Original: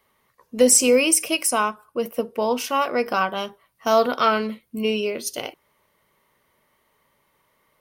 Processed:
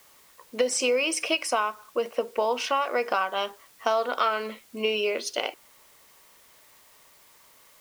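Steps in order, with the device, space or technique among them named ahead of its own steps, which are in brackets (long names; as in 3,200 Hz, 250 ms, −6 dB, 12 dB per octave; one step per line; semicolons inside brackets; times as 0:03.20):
baby monitor (band-pass filter 470–4,300 Hz; downward compressor, threshold −26 dBFS, peak gain reduction 12 dB; white noise bed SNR 28 dB)
level +4.5 dB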